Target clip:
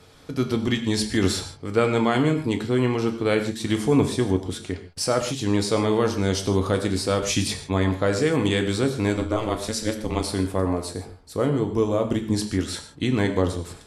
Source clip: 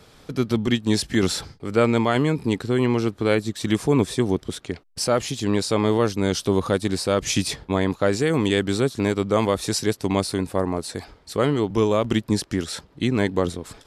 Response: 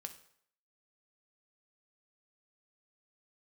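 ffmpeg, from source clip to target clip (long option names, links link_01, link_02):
-filter_complex "[0:a]asettb=1/sr,asplit=3[link_01][link_02][link_03];[link_01]atrim=end=9.154[link_04];[link_02]atrim=start=9.15:end=10.24,asetpts=PTS-STARTPTS,afade=type=in:duration=0.004:curve=qsin,afade=type=out:start_time=1.086:duration=0.004:curve=qsin,aeval=exprs='val(0)*sin(2*PI*110*n/s)':channel_layout=same[link_05];[link_03]atrim=start=10.236[link_06];[link_04][link_05]acrossfade=duration=0.004:curve1=hsin:curve2=qsin[link_07];[link_07][link_06]acrossfade=duration=0.004:curve1=qsin:curve2=hsin,asettb=1/sr,asplit=3[link_08][link_09][link_10];[link_08]atrim=end=10.894[link_11];[link_09]atrim=start=10.89:end=12.34,asetpts=PTS-STARTPTS,afade=type=in:duration=0.004:curve=qsin,afade=type=out:start_time=1.446:duration=0.004:curve=qsin,equalizer=frequency=2900:width_type=o:width=2.6:gain=-8[link_12];[link_10]atrim=start=12.336[link_13];[link_11][link_12]acrossfade=duration=0.004:curve1=hsin:curve2=qsin[link_14];[link_14][link_13]acrossfade=duration=0.004:curve1=qsin:curve2=hsin[link_15];[1:a]atrim=start_sample=2205,atrim=end_sample=3969,asetrate=23814,aresample=44100[link_16];[link_15][link_16]afir=irnorm=-1:irlink=0"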